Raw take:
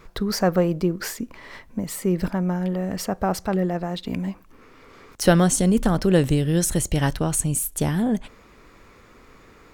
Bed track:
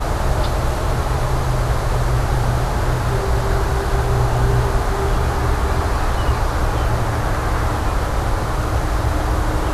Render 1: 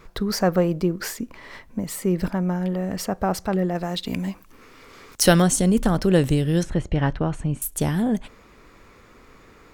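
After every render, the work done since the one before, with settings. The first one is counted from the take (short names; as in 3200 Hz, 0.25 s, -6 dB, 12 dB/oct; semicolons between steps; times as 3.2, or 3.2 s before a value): 3.75–5.42 high shelf 2600 Hz +8.5 dB; 6.63–7.62 LPF 2300 Hz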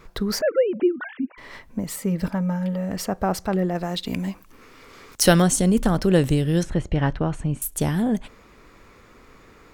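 0.41–1.38 sine-wave speech; 1.96–2.91 notch comb 360 Hz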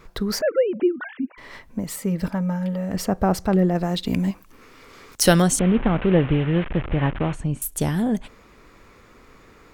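2.94–4.31 low shelf 450 Hz +6 dB; 5.59–7.33 delta modulation 16 kbps, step -25.5 dBFS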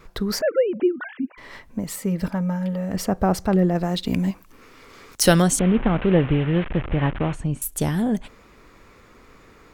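wow and flutter 17 cents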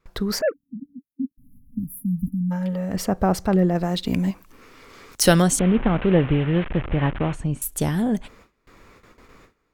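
gate with hold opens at -39 dBFS; 0.53–2.51 spectral delete 290–10000 Hz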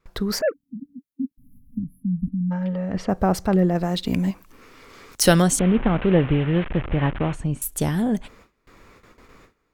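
1.78–3.09 LPF 3400 Hz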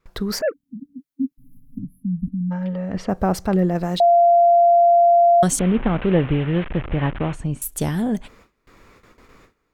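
0.95–1.85 comb 7.1 ms, depth 77%; 4–5.43 bleep 690 Hz -10 dBFS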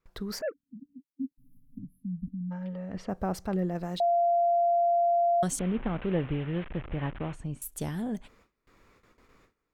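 gain -11 dB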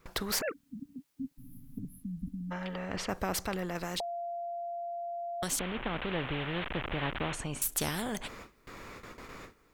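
vocal rider within 5 dB 2 s; spectral compressor 2:1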